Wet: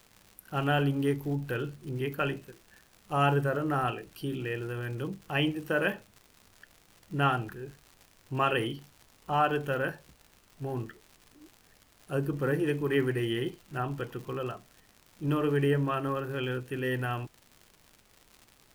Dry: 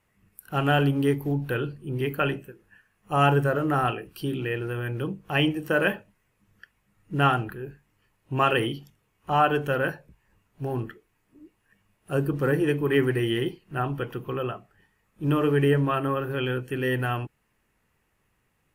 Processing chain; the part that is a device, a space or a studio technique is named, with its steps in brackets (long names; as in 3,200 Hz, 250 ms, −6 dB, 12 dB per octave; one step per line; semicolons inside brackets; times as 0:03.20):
vinyl LP (surface crackle 130 per second −36 dBFS; pink noise bed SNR 32 dB)
level −5 dB